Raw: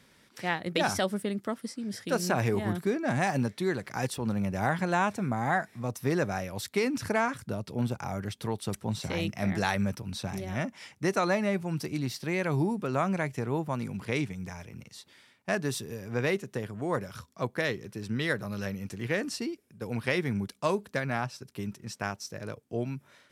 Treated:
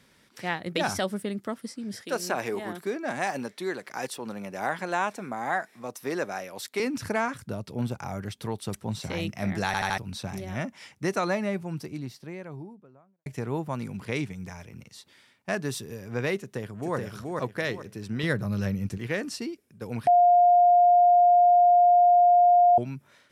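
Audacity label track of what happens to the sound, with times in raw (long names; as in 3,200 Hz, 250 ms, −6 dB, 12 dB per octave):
2.010000	6.800000	high-pass filter 310 Hz
9.660000	9.660000	stutter in place 0.08 s, 4 plays
11.130000	13.260000	fade out and dull
16.390000	16.960000	delay throw 430 ms, feedback 30%, level −2.5 dB
18.230000	18.980000	parametric band 100 Hz +9.5 dB 2.9 octaves
20.070000	22.780000	beep over 707 Hz −14.5 dBFS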